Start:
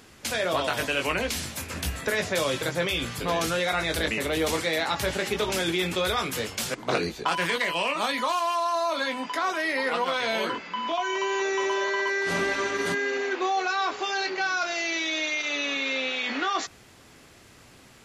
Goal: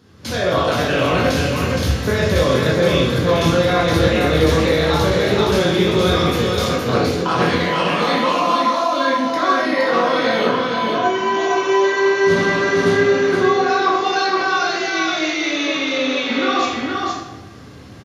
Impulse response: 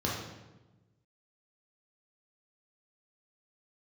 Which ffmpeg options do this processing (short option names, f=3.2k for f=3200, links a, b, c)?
-filter_complex "[0:a]aecho=1:1:468:0.668,dynaudnorm=f=140:g=3:m=8.5dB[a];[1:a]atrim=start_sample=2205[b];[a][b]afir=irnorm=-1:irlink=0,volume=-9dB"